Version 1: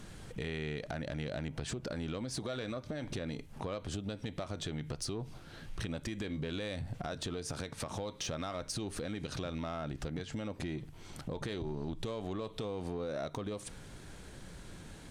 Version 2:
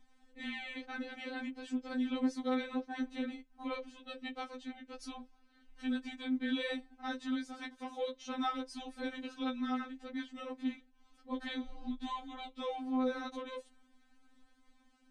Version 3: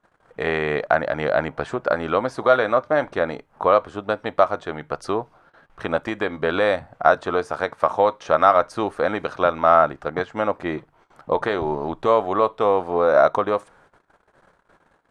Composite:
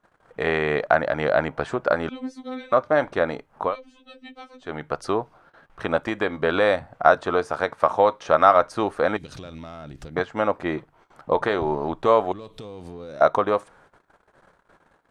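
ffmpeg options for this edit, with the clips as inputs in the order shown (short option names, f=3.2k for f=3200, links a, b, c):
-filter_complex "[1:a]asplit=2[a][b];[0:a]asplit=2[c][d];[2:a]asplit=5[e][f][g][h][i];[e]atrim=end=2.092[j];[a]atrim=start=2.088:end=2.722[k];[f]atrim=start=2.718:end=3.76[l];[b]atrim=start=3.6:end=4.75[m];[g]atrim=start=4.59:end=9.172[n];[c]atrim=start=9.168:end=10.162[o];[h]atrim=start=10.158:end=12.322[p];[d]atrim=start=12.318:end=13.212[q];[i]atrim=start=13.208[r];[j][k]acrossfade=d=0.004:c1=hsin:c2=hsin[s];[s][l]acrossfade=d=0.004:c1=hsin:c2=hsin[t];[t][m]acrossfade=d=0.16:c1=tri:c2=tri[u];[u][n]acrossfade=d=0.16:c1=tri:c2=tri[v];[v][o]acrossfade=d=0.004:c1=hsin:c2=hsin[w];[w][p]acrossfade=d=0.004:c1=hsin:c2=hsin[x];[x][q]acrossfade=d=0.004:c1=hsin:c2=hsin[y];[y][r]acrossfade=d=0.004:c1=hsin:c2=hsin"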